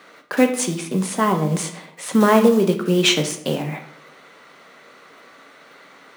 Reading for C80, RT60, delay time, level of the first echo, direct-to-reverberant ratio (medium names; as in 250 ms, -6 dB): 13.5 dB, 0.75 s, no echo, no echo, 5.0 dB